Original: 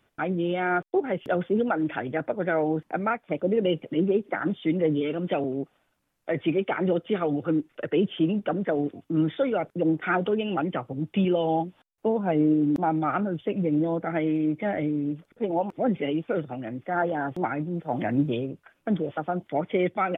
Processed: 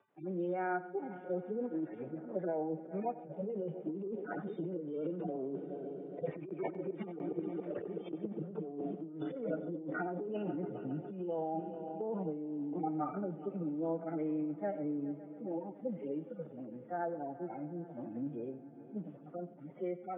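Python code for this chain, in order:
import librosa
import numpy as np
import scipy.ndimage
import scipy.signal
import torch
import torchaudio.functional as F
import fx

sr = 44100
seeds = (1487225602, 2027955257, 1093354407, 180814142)

y = fx.hpss_only(x, sr, part='harmonic')
y = fx.doppler_pass(y, sr, speed_mps=5, closest_m=3.0, pass_at_s=7.43)
y = fx.gate_flip(y, sr, shuts_db=-23.0, range_db=-29)
y = scipy.signal.sosfilt(scipy.signal.bessel(2, 970.0, 'lowpass', norm='mag', fs=sr, output='sos'), y)
y = fx.echo_heads(y, sr, ms=138, heads='first and third', feedback_pct=68, wet_db=-21.0)
y = fx.over_compress(y, sr, threshold_db=-46.0, ratio=-1.0)
y = scipy.signal.sosfilt(scipy.signal.butter(4, 170.0, 'highpass', fs=sr, output='sos'), y)
y = fx.peak_eq(y, sr, hz=220.0, db=-7.5, octaves=1.2)
y = y + 10.0 ** (-17.5 / 20.0) * np.pad(y, (int(91 * sr / 1000.0), 0))[:len(y)]
y = fx.band_squash(y, sr, depth_pct=40)
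y = y * 10.0 ** (12.5 / 20.0)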